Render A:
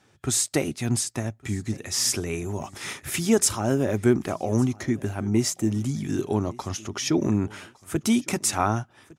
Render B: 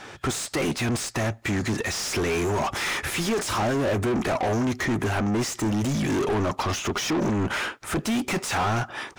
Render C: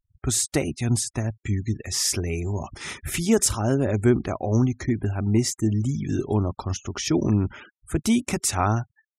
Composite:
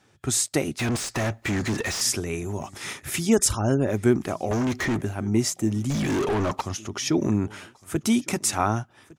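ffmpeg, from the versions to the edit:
-filter_complex "[1:a]asplit=3[s0][s1][s2];[0:a]asplit=5[s3][s4][s5][s6][s7];[s3]atrim=end=0.792[s8];[s0]atrim=start=0.788:end=2.012[s9];[s4]atrim=start=2.008:end=3.3[s10];[2:a]atrim=start=3.2:end=3.93[s11];[s5]atrim=start=3.83:end=4.512[s12];[s1]atrim=start=4.508:end=5.012[s13];[s6]atrim=start=5.008:end=5.902[s14];[s2]atrim=start=5.898:end=6.612[s15];[s7]atrim=start=6.608[s16];[s8][s9]acrossfade=d=0.004:c1=hsin:c2=hsin[s17];[s17][s10]acrossfade=d=0.004:c1=hsin:c2=hsin[s18];[s18][s11]acrossfade=d=0.1:c1=tri:c2=tri[s19];[s19][s12]acrossfade=d=0.1:c1=tri:c2=tri[s20];[s20][s13]acrossfade=d=0.004:c1=hsin:c2=hsin[s21];[s21][s14]acrossfade=d=0.004:c1=hsin:c2=hsin[s22];[s22][s15]acrossfade=d=0.004:c1=hsin:c2=hsin[s23];[s23][s16]acrossfade=d=0.004:c1=hsin:c2=hsin"

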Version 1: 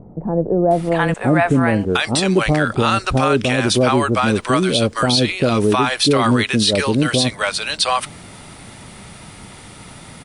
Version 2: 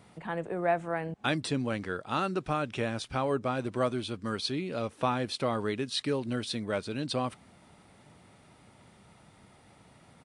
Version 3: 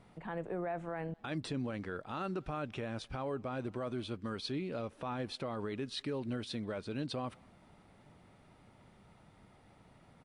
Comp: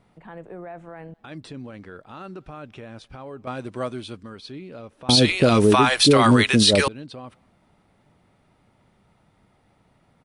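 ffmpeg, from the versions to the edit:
-filter_complex "[2:a]asplit=3[s0][s1][s2];[s0]atrim=end=3.472[s3];[1:a]atrim=start=3.468:end=4.232[s4];[s1]atrim=start=4.228:end=5.092[s5];[0:a]atrim=start=5.088:end=6.882[s6];[s2]atrim=start=6.878[s7];[s3][s4]acrossfade=d=0.004:c1=hsin:c2=hsin[s8];[s8][s5]acrossfade=d=0.004:c1=hsin:c2=hsin[s9];[s9][s6]acrossfade=d=0.004:c1=hsin:c2=hsin[s10];[s10][s7]acrossfade=d=0.004:c1=hsin:c2=hsin"

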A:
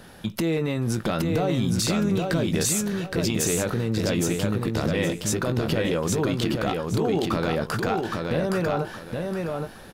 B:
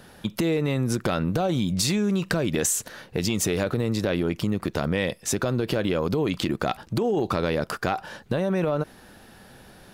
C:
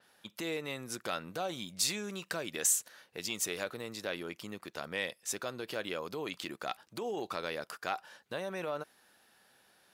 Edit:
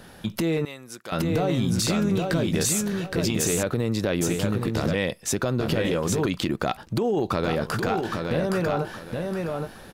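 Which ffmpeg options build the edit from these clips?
-filter_complex "[1:a]asplit=3[s0][s1][s2];[0:a]asplit=5[s3][s4][s5][s6][s7];[s3]atrim=end=0.652[s8];[2:a]atrim=start=0.648:end=1.122[s9];[s4]atrim=start=1.118:end=3.632[s10];[s0]atrim=start=3.628:end=4.212[s11];[s5]atrim=start=4.208:end=4.952[s12];[s1]atrim=start=4.948:end=5.602[s13];[s6]atrim=start=5.598:end=6.262[s14];[s2]atrim=start=6.258:end=7.442[s15];[s7]atrim=start=7.438[s16];[s8][s9]acrossfade=d=0.004:c1=hsin:c2=hsin[s17];[s17][s10]acrossfade=d=0.004:c1=hsin:c2=hsin[s18];[s18][s11]acrossfade=d=0.004:c1=hsin:c2=hsin[s19];[s19][s12]acrossfade=d=0.004:c1=hsin:c2=hsin[s20];[s20][s13]acrossfade=d=0.004:c1=hsin:c2=hsin[s21];[s21][s14]acrossfade=d=0.004:c1=hsin:c2=hsin[s22];[s22][s15]acrossfade=d=0.004:c1=hsin:c2=hsin[s23];[s23][s16]acrossfade=d=0.004:c1=hsin:c2=hsin"

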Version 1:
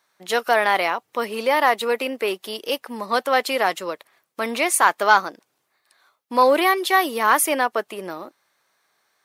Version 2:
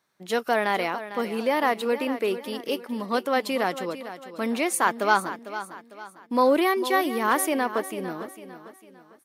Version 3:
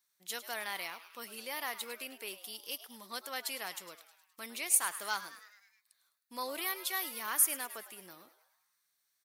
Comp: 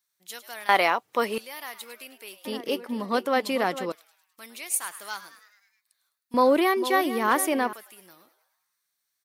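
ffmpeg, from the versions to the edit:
-filter_complex "[1:a]asplit=2[s0][s1];[2:a]asplit=4[s2][s3][s4][s5];[s2]atrim=end=0.692[s6];[0:a]atrim=start=0.688:end=1.382[s7];[s3]atrim=start=1.378:end=2.452[s8];[s0]atrim=start=2.448:end=3.922[s9];[s4]atrim=start=3.918:end=6.342[s10];[s1]atrim=start=6.338:end=7.732[s11];[s5]atrim=start=7.728[s12];[s6][s7]acrossfade=d=0.004:c1=hsin:c2=hsin[s13];[s13][s8]acrossfade=d=0.004:c1=hsin:c2=hsin[s14];[s14][s9]acrossfade=d=0.004:c1=hsin:c2=hsin[s15];[s15][s10]acrossfade=d=0.004:c1=hsin:c2=hsin[s16];[s16][s11]acrossfade=d=0.004:c1=hsin:c2=hsin[s17];[s17][s12]acrossfade=d=0.004:c1=hsin:c2=hsin"

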